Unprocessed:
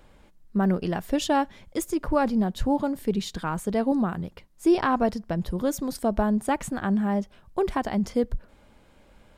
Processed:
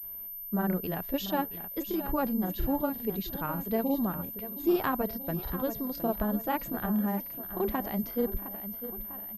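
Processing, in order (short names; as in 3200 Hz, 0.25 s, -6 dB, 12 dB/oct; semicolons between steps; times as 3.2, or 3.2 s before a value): feedback echo 0.674 s, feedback 50%, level -11.5 dB; grains, spray 30 ms, pitch spread up and down by 0 st; pulse-width modulation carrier 13000 Hz; gain -5 dB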